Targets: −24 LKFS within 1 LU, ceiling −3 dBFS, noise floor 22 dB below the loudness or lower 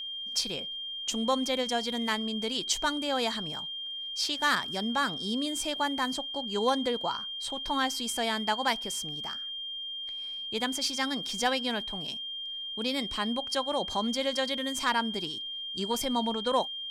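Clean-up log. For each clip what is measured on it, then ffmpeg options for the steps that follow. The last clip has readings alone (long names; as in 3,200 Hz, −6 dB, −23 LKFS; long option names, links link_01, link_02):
interfering tone 3,200 Hz; level of the tone −35 dBFS; integrated loudness −30.0 LKFS; sample peak −15.5 dBFS; target loudness −24.0 LKFS
→ -af "bandreject=frequency=3200:width=30"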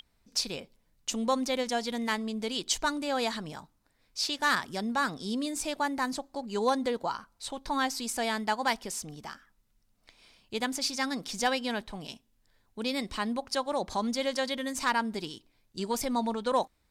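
interfering tone none found; integrated loudness −31.0 LKFS; sample peak −16.0 dBFS; target loudness −24.0 LKFS
→ -af "volume=7dB"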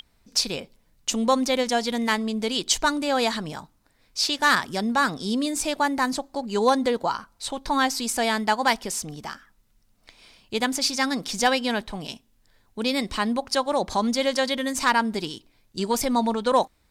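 integrated loudness −24.0 LKFS; sample peak −9.0 dBFS; background noise floor −64 dBFS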